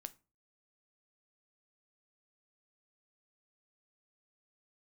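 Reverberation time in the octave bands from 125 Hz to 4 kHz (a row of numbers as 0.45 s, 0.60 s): 0.45 s, 0.40 s, 0.35 s, 0.30 s, 0.25 s, 0.20 s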